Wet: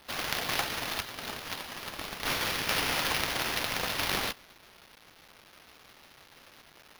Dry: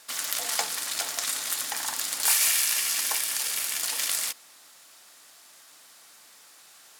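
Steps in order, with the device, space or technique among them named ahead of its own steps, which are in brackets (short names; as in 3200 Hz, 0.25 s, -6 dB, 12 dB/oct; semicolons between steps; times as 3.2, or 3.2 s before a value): 1–2.69 passive tone stack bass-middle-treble 5-5-5; early 8-bit sampler (sample-rate reducer 7900 Hz, jitter 0%; bit-crush 8-bit); gain -2.5 dB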